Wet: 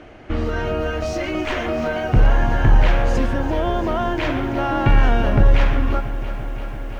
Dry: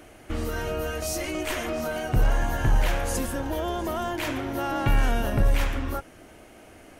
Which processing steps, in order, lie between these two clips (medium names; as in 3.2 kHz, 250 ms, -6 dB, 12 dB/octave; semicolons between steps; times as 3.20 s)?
distance through air 200 m; bit-crushed delay 340 ms, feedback 80%, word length 9-bit, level -14.5 dB; trim +7.5 dB